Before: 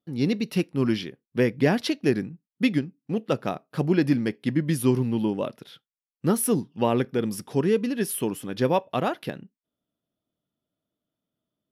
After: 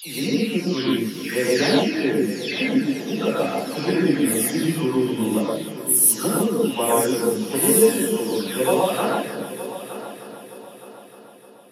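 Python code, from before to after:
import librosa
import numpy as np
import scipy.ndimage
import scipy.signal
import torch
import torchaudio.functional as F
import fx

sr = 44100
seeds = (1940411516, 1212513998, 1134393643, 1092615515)

p1 = fx.spec_delay(x, sr, highs='early', ms=495)
p2 = scipy.signal.sosfilt(scipy.signal.butter(2, 210.0, 'highpass', fs=sr, output='sos'), p1)
p3 = fx.high_shelf(p2, sr, hz=5400.0, db=10.0)
p4 = p3 + fx.echo_heads(p3, sr, ms=306, heads='first and third', feedback_pct=54, wet_db=-14.0, dry=0)
y = fx.rev_gated(p4, sr, seeds[0], gate_ms=170, shape='rising', drr_db=-4.5)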